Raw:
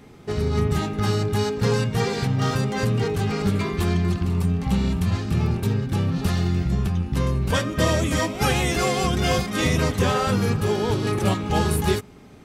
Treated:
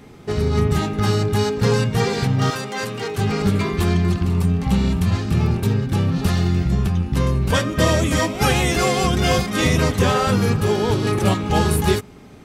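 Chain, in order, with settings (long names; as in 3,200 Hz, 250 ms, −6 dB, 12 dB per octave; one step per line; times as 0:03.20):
0:02.50–0:03.18: high-pass filter 660 Hz 6 dB per octave
level +3.5 dB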